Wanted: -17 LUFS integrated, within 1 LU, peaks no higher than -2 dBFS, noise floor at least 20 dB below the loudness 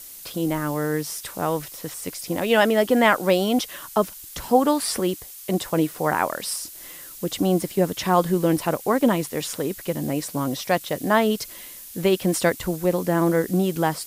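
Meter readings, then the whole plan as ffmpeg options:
noise floor -41 dBFS; noise floor target -43 dBFS; loudness -23.0 LUFS; peak -5.0 dBFS; loudness target -17.0 LUFS
-> -af "afftdn=nr=6:nf=-41"
-af "volume=6dB,alimiter=limit=-2dB:level=0:latency=1"

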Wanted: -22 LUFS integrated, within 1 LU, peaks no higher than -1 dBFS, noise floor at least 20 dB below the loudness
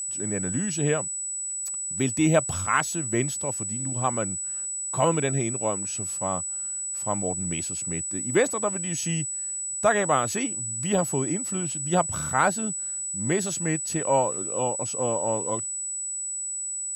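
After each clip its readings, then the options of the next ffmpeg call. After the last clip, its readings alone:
steady tone 7900 Hz; tone level -29 dBFS; loudness -25.5 LUFS; peak -8.0 dBFS; loudness target -22.0 LUFS
-> -af "bandreject=f=7.9k:w=30"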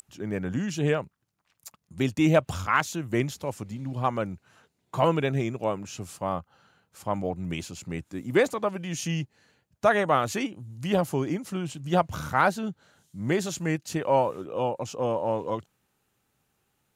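steady tone none; loudness -28.0 LUFS; peak -8.5 dBFS; loudness target -22.0 LUFS
-> -af "volume=6dB"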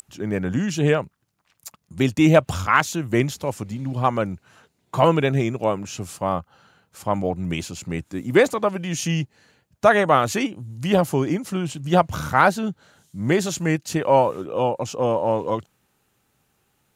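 loudness -22.0 LUFS; peak -2.5 dBFS; noise floor -69 dBFS

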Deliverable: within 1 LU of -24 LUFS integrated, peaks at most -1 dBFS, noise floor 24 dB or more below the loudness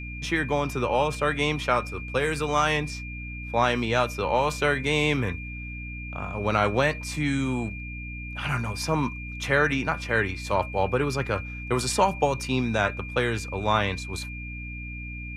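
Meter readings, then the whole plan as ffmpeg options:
hum 60 Hz; harmonics up to 300 Hz; hum level -35 dBFS; steady tone 2400 Hz; tone level -38 dBFS; loudness -26.5 LUFS; peak -8.5 dBFS; loudness target -24.0 LUFS
-> -af "bandreject=f=60:t=h:w=4,bandreject=f=120:t=h:w=4,bandreject=f=180:t=h:w=4,bandreject=f=240:t=h:w=4,bandreject=f=300:t=h:w=4"
-af "bandreject=f=2.4k:w=30"
-af "volume=2.5dB"

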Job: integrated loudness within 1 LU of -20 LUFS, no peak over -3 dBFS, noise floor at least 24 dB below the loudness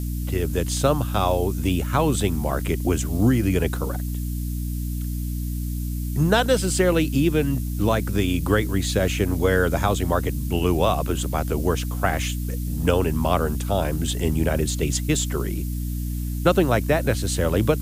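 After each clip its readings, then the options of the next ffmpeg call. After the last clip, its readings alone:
hum 60 Hz; harmonics up to 300 Hz; hum level -24 dBFS; noise floor -27 dBFS; noise floor target -47 dBFS; loudness -23.0 LUFS; peak -4.5 dBFS; loudness target -20.0 LUFS
-> -af "bandreject=f=60:t=h:w=4,bandreject=f=120:t=h:w=4,bandreject=f=180:t=h:w=4,bandreject=f=240:t=h:w=4,bandreject=f=300:t=h:w=4"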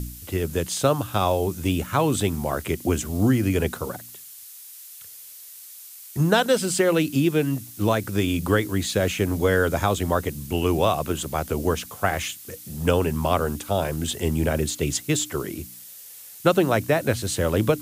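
hum none; noise floor -43 dBFS; noise floor target -48 dBFS
-> -af "afftdn=nr=6:nf=-43"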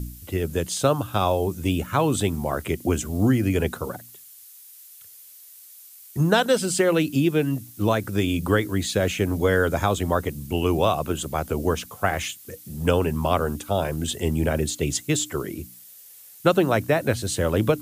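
noise floor -47 dBFS; noise floor target -48 dBFS
-> -af "afftdn=nr=6:nf=-47"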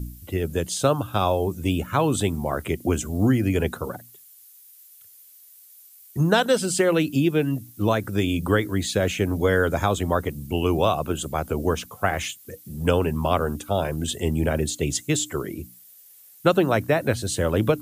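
noise floor -50 dBFS; loudness -23.5 LUFS; peak -5.0 dBFS; loudness target -20.0 LUFS
-> -af "volume=3.5dB,alimiter=limit=-3dB:level=0:latency=1"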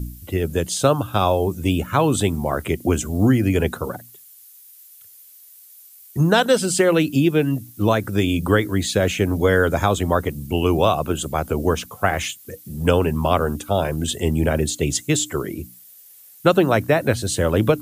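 loudness -20.0 LUFS; peak -3.0 dBFS; noise floor -47 dBFS

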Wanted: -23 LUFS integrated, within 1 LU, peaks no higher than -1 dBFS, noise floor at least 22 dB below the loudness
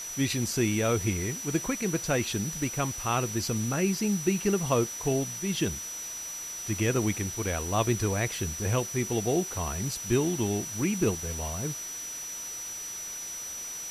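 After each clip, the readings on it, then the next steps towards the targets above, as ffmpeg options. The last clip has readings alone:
steady tone 5900 Hz; tone level -36 dBFS; noise floor -38 dBFS; noise floor target -51 dBFS; loudness -29.0 LUFS; peak -12.0 dBFS; loudness target -23.0 LUFS
-> -af "bandreject=f=5.9k:w=30"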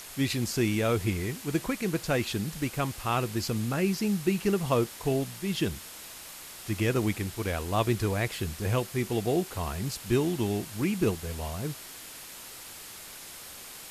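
steady tone none; noise floor -45 dBFS; noise floor target -52 dBFS
-> -af "afftdn=nr=7:nf=-45"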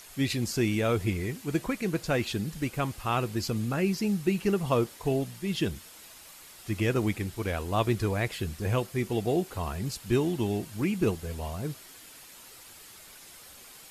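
noise floor -50 dBFS; noise floor target -52 dBFS
-> -af "afftdn=nr=6:nf=-50"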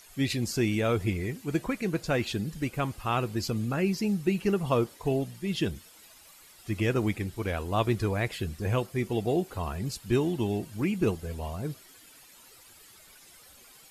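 noise floor -54 dBFS; loudness -30.0 LUFS; peak -12.0 dBFS; loudness target -23.0 LUFS
-> -af "volume=7dB"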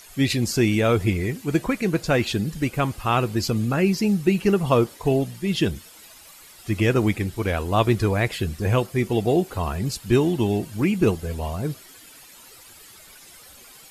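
loudness -23.0 LUFS; peak -5.0 dBFS; noise floor -47 dBFS

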